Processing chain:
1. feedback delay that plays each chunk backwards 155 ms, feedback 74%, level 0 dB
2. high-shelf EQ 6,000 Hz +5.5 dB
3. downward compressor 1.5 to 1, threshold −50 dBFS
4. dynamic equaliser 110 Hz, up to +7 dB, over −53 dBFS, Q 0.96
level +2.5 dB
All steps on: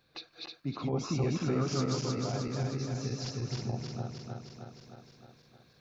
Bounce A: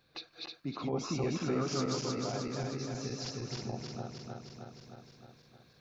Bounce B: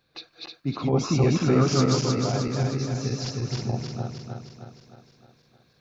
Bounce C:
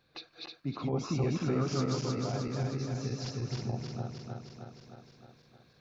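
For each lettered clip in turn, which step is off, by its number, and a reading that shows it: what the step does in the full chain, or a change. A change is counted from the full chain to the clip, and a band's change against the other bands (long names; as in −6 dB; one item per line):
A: 4, 125 Hz band −6.0 dB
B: 3, average gain reduction 6.5 dB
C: 2, 4 kHz band −2.0 dB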